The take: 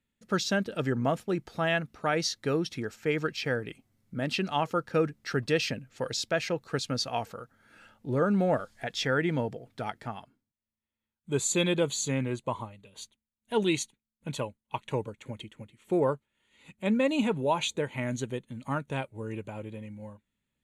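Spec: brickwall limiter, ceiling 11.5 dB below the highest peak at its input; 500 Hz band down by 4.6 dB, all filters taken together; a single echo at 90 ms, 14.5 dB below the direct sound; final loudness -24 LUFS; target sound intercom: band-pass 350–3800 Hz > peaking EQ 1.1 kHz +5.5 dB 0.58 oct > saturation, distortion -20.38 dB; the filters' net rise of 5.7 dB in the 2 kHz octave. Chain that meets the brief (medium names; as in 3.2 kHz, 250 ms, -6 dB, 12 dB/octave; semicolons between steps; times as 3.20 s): peaking EQ 500 Hz -5 dB; peaking EQ 2 kHz +7 dB; peak limiter -24 dBFS; band-pass 350–3800 Hz; peaking EQ 1.1 kHz +5.5 dB 0.58 oct; delay 90 ms -14.5 dB; saturation -23.5 dBFS; trim +13.5 dB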